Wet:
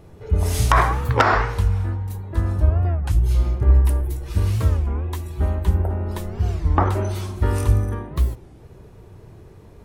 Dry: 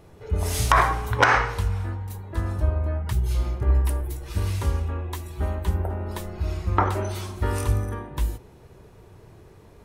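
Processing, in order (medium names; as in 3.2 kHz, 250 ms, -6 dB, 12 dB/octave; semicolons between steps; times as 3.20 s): bass shelf 420 Hz +6 dB; warped record 33 1/3 rpm, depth 250 cents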